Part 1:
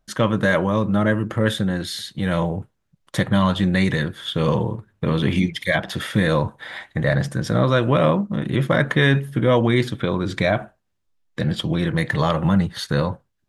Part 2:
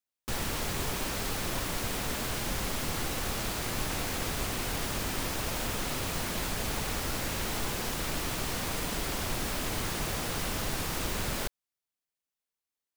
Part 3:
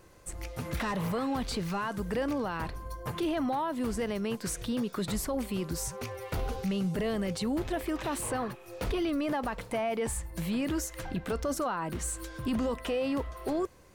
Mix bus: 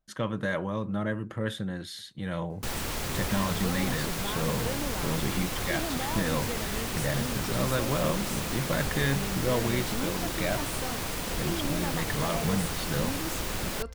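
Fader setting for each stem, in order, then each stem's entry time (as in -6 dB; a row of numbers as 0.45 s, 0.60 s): -11.5 dB, 0.0 dB, -5.5 dB; 0.00 s, 2.35 s, 2.50 s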